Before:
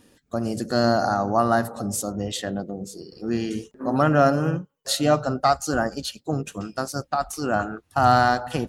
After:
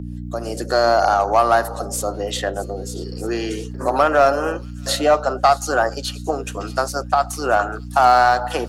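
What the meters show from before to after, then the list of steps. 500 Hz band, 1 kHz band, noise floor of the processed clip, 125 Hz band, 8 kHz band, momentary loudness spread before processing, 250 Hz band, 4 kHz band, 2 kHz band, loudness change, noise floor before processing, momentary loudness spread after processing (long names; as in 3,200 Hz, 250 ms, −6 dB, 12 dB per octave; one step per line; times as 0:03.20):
+5.5 dB, +6.0 dB, −32 dBFS, −2.5 dB, +3.0 dB, 12 LU, −3.0 dB, +3.5 dB, +5.5 dB, +4.5 dB, −67 dBFS, 13 LU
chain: fade in at the beginning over 0.77 s
high-pass filter 370 Hz 24 dB per octave
dynamic equaliser 930 Hz, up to +4 dB, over −32 dBFS, Q 0.84
in parallel at −4.5 dB: hard clipping −14.5 dBFS, distortion −10 dB
on the sum: delay with a high-pass on its return 626 ms, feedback 60%, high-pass 4,400 Hz, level −19 dB
mains hum 60 Hz, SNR 14 dB
multiband upward and downward compressor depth 40%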